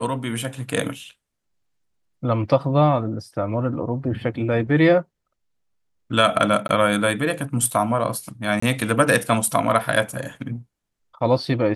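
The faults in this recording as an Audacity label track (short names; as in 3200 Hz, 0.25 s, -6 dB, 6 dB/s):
6.680000	6.690000	gap
8.600000	8.620000	gap 24 ms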